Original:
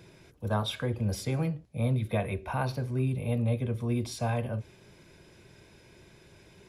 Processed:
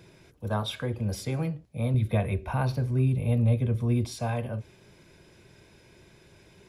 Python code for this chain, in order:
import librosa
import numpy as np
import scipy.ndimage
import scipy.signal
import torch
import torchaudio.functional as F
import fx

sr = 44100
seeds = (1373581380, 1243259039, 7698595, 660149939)

y = fx.low_shelf(x, sr, hz=170.0, db=8.5, at=(1.94, 4.05))